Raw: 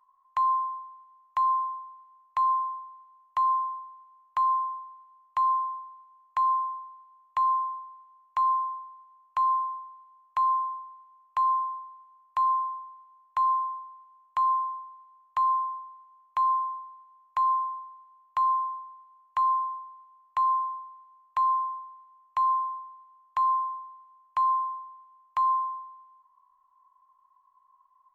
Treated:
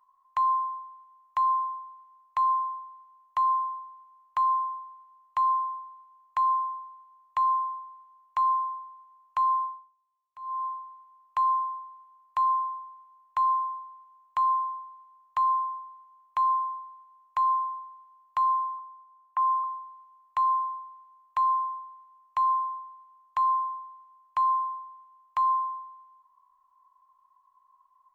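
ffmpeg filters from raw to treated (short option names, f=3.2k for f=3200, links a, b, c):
-filter_complex "[0:a]asettb=1/sr,asplit=3[a][b][c];[a]atrim=end=18.794[d];[b]atrim=start=18.79:end=19.64,asetpts=PTS-STARTPTS,afade=t=in:d=0.004:c=qsin,afade=t=out:st=0.846:d=0.004:c=qsin,acrossover=split=180 2100:gain=0.0891 1 0.0708[e][f][g];[e][f][g]amix=inputs=3:normalize=0[h];[c]atrim=start=19.636[i];[d][h]acrossfade=d=0.004:c1=hsin:c2=qsin[j];[j][i]acrossfade=d=0.004:c1=qsin:c2=hsin,asplit=3[k][l][m];[k]atrim=end=9.97,asetpts=PTS-STARTPTS,afade=t=out:st=9.64:d=0.33:c=qua:silence=0.0749894[n];[l]atrim=start=9.97:end=10.33,asetpts=PTS-STARTPTS,volume=-22.5dB[o];[m]atrim=start=10.33,asetpts=PTS-STARTPTS,afade=t=in:d=0.33:c=qua:silence=0.0749894[p];[n][o][p]concat=n=3:v=0:a=1"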